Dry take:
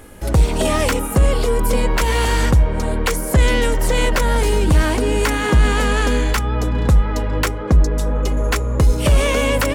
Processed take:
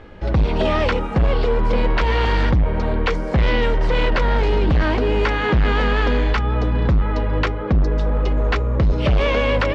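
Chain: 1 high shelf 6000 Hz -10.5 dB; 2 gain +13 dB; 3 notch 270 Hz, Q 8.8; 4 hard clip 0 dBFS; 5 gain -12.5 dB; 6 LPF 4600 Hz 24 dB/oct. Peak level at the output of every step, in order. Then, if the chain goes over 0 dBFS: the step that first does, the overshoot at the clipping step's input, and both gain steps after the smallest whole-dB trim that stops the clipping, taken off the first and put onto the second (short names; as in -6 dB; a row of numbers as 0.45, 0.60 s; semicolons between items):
-6.0, +7.0, +7.5, 0.0, -12.5, -11.0 dBFS; step 2, 7.5 dB; step 2 +5 dB, step 5 -4.5 dB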